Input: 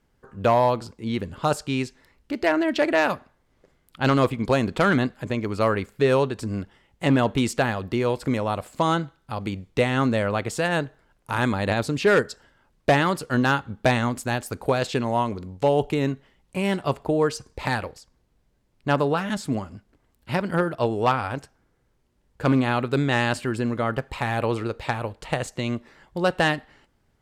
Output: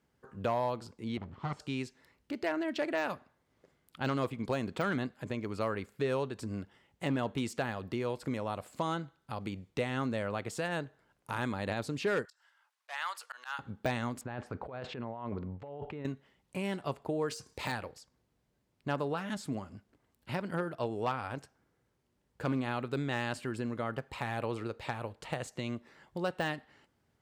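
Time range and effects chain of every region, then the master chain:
0:01.17–0:01.60: lower of the sound and its delayed copy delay 0.93 ms + head-to-tape spacing loss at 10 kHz 25 dB
0:12.25–0:13.59: high-pass filter 900 Hz 24 dB per octave + volume swells 175 ms
0:14.21–0:16.05: low-pass filter 1,900 Hz + parametric band 300 Hz −2.5 dB 1 octave + compressor whose output falls as the input rises −32 dBFS
0:17.28–0:17.72: high-shelf EQ 2,300 Hz +9 dB + double-tracking delay 26 ms −11 dB
whole clip: downward compressor 1.5 to 1, threshold −35 dBFS; high-pass filter 81 Hz; de-essing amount 70%; level −5.5 dB

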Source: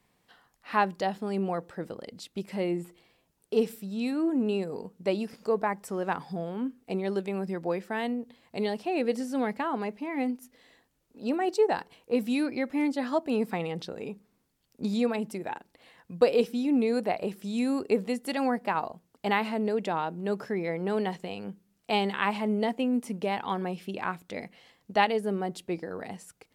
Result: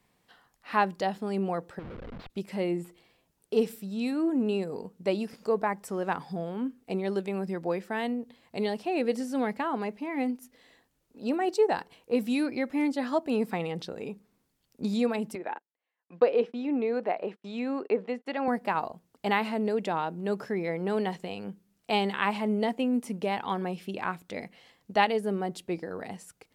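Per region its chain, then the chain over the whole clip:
0:01.79–0:02.30: comparator with hysteresis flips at −47.5 dBFS + high-frequency loss of the air 380 metres
0:15.35–0:18.48: noise gate −43 dBFS, range −34 dB + band-pass filter 310–2,200 Hz + one half of a high-frequency compander encoder only
whole clip: no processing

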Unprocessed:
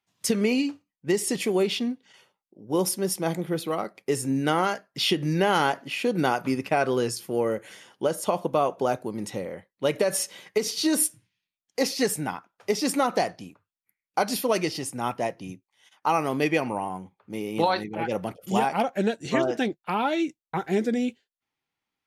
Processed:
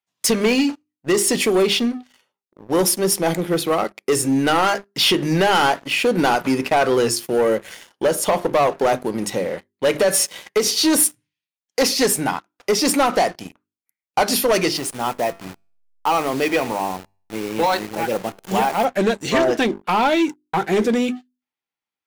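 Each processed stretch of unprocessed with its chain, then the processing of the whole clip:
0:14.77–0:18.85: hold until the input has moved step −35.5 dBFS + tuned comb filter 97 Hz, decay 0.58 s, mix 40%
whole clip: low-shelf EQ 160 Hz −9 dB; mains-hum notches 50/100/150/200/250/300/350/400 Hz; leveller curve on the samples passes 3

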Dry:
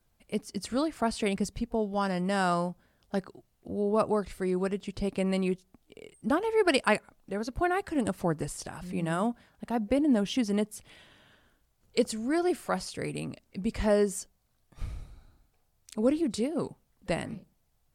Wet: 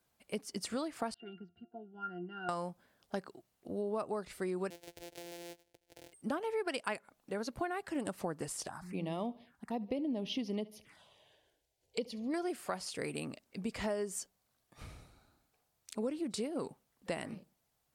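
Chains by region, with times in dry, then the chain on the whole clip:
0:01.14–0:02.49: loudspeaker in its box 160–4,300 Hz, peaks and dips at 180 Hz −7 dB, 260 Hz +8 dB, 480 Hz −4 dB, 820 Hz −4 dB, 1,500 Hz +8 dB + resonances in every octave F, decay 0.18 s
0:04.70–0:06.13: samples sorted by size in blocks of 256 samples + phaser with its sweep stopped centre 480 Hz, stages 4 + downward compressor 4 to 1, threshold −44 dBFS
0:08.68–0:12.34: high-shelf EQ 8,600 Hz −8 dB + phaser swept by the level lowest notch 200 Hz, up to 1,500 Hz, full sweep at −31.5 dBFS + repeating echo 70 ms, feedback 41%, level −22 dB
whole clip: high-pass filter 280 Hz 6 dB per octave; downward compressor 6 to 1, threshold −32 dBFS; level −1 dB

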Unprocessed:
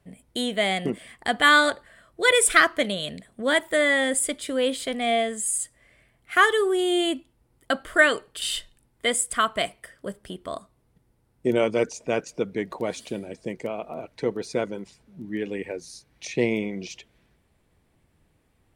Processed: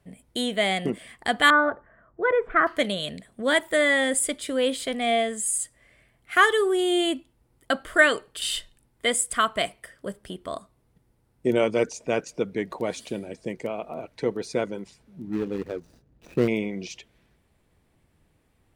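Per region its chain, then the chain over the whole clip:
0:01.50–0:02.67: low-pass filter 1,500 Hz 24 dB per octave + notch filter 540 Hz, Q 15
0:15.27–0:16.48: running median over 41 samples + low-shelf EQ 390 Hz +4 dB
whole clip: no processing

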